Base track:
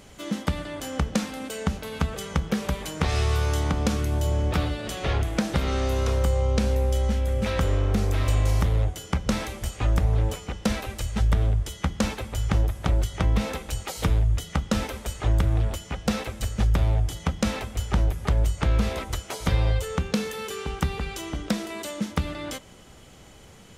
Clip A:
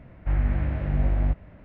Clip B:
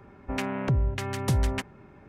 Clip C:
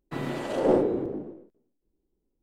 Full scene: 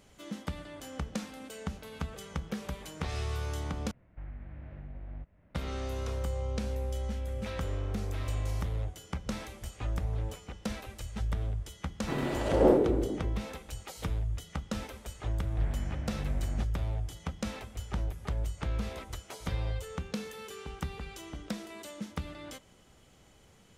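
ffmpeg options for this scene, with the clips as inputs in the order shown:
-filter_complex "[1:a]asplit=2[a][b];[0:a]volume=-11dB[c];[a]alimiter=limit=-21dB:level=0:latency=1:release=260[d];[c]asplit=2[e][f];[e]atrim=end=3.914[g];[d]atrim=end=1.64,asetpts=PTS-STARTPTS,volume=-14.5dB[h];[f]atrim=start=5.546[i];[3:a]atrim=end=2.42,asetpts=PTS-STARTPTS,volume=-0.5dB,afade=t=in:d=0.004:c=hsin,afade=t=out:st=2.416:d=0.004:c=hsin,adelay=11960[j];[b]atrim=end=1.64,asetpts=PTS-STARTPTS,volume=-9.5dB,afade=t=in:d=0.004:c=hsin,afade=t=out:st=1.636:d=0.004:c=hsin,adelay=15310[k];[g][h]acrossfade=d=0.004:c1=hsin:c2=hsin[l];[l][i]acrossfade=d=0.004:c1=hsin:c2=hsin[m];[m][j][k]amix=inputs=3:normalize=0"

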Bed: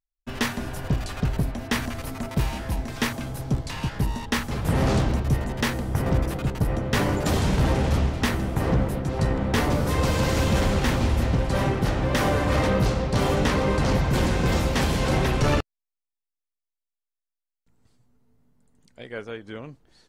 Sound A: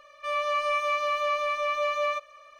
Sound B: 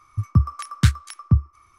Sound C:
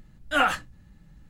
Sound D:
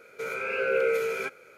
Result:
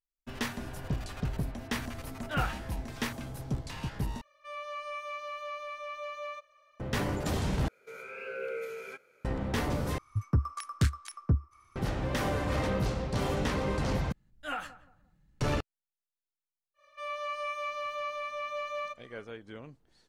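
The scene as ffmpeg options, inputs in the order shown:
-filter_complex "[3:a]asplit=2[a][b];[1:a]asplit=2[c][d];[0:a]volume=-8.5dB[e];[a]lowpass=4.1k[f];[2:a]asoftclip=type=tanh:threshold=-13dB[g];[b]asplit=2[h][i];[i]adelay=175,lowpass=f=1.1k:p=1,volume=-14.5dB,asplit=2[j][k];[k]adelay=175,lowpass=f=1.1k:p=1,volume=0.33,asplit=2[l][m];[m]adelay=175,lowpass=f=1.1k:p=1,volume=0.33[n];[h][j][l][n]amix=inputs=4:normalize=0[o];[e]asplit=5[p][q][r][s][t];[p]atrim=end=4.214[u];[c]atrim=end=2.59,asetpts=PTS-STARTPTS,volume=-12.5dB[v];[q]atrim=start=6.796:end=7.684[w];[4:a]atrim=end=1.57,asetpts=PTS-STARTPTS,volume=-12dB[x];[r]atrim=start=9.246:end=9.984[y];[g]atrim=end=1.78,asetpts=PTS-STARTPTS,volume=-5.5dB[z];[s]atrim=start=11.756:end=14.124[aa];[o]atrim=end=1.29,asetpts=PTS-STARTPTS,volume=-14.5dB[ab];[t]atrim=start=15.406[ac];[f]atrim=end=1.29,asetpts=PTS-STARTPTS,volume=-11.5dB,afade=t=in:d=0.004:c=hsin,afade=t=out:st=1.286:d=0.004:c=hsin,adelay=1980[ad];[d]atrim=end=2.59,asetpts=PTS-STARTPTS,volume=-9dB,afade=t=in:d=0.1,afade=t=out:st=2.49:d=0.1,adelay=16740[ae];[u][v]acrossfade=d=0.004:c1=hsin:c2=hsin[af];[af][w]acrossfade=d=0.004:c1=hsin:c2=hsin[ag];[ag][x]acrossfade=d=0.004:c1=hsin:c2=hsin[ah];[ah][y]acrossfade=d=0.004:c1=hsin:c2=hsin[ai];[ai][z]acrossfade=d=0.004:c1=hsin:c2=hsin[aj];[aj][aa]acrossfade=d=0.004:c1=hsin:c2=hsin[ak];[ak][ab]acrossfade=d=0.004:c1=hsin:c2=hsin[al];[al][ac]acrossfade=d=0.004:c1=hsin:c2=hsin[am];[am][ad][ae]amix=inputs=3:normalize=0"

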